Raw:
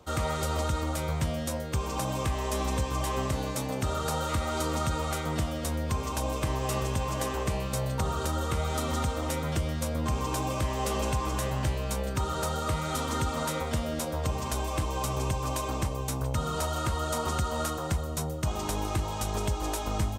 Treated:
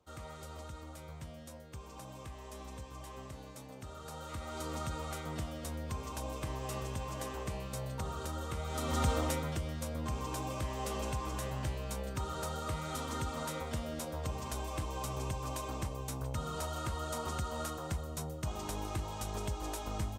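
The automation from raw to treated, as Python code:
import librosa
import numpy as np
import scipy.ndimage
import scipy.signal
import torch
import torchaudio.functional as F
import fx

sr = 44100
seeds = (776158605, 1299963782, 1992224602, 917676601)

y = fx.gain(x, sr, db=fx.line((3.95, -17.5), (4.73, -9.5), (8.65, -9.5), (9.13, 0.5), (9.58, -8.0)))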